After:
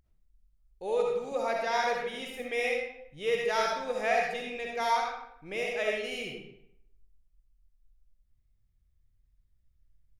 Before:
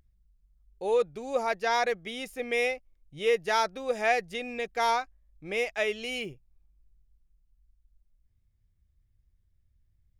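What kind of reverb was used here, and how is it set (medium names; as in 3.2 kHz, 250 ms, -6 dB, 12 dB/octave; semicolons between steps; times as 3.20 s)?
algorithmic reverb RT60 0.75 s, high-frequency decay 0.75×, pre-delay 25 ms, DRR -1 dB; trim -5 dB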